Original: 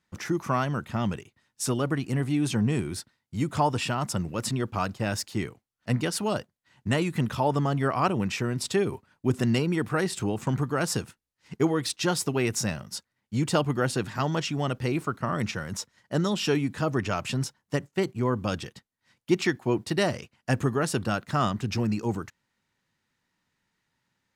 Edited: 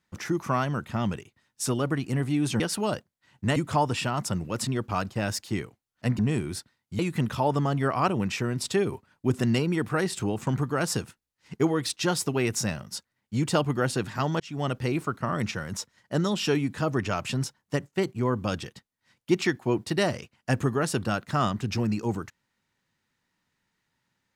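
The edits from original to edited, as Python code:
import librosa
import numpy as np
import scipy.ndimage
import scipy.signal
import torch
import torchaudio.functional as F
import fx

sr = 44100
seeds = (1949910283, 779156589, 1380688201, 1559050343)

y = fx.edit(x, sr, fx.swap(start_s=2.6, length_s=0.8, other_s=6.03, other_length_s=0.96),
    fx.fade_in_span(start_s=14.4, length_s=0.25), tone=tone)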